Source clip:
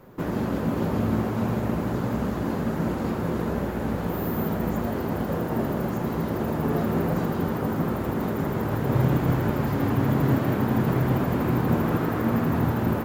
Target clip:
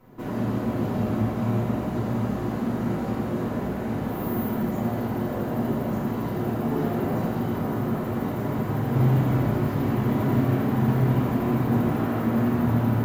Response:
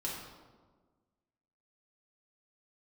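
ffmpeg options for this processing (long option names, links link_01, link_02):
-filter_complex "[1:a]atrim=start_sample=2205,afade=type=out:start_time=0.18:duration=0.01,atrim=end_sample=8379,asetrate=32634,aresample=44100[link_01];[0:a][link_01]afir=irnorm=-1:irlink=0,volume=-5.5dB"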